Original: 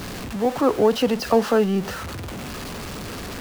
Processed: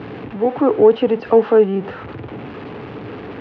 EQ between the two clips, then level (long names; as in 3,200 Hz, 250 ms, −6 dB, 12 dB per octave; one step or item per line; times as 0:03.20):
loudspeaker in its box 100–2,900 Hz, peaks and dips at 120 Hz +9 dB, 300 Hz +8 dB, 440 Hz +9 dB, 820 Hz +5 dB
−1.5 dB